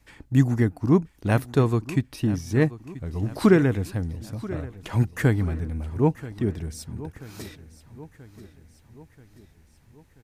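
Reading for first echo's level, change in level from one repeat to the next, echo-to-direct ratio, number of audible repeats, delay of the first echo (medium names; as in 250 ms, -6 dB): -17.0 dB, -5.5 dB, -15.5 dB, 4, 983 ms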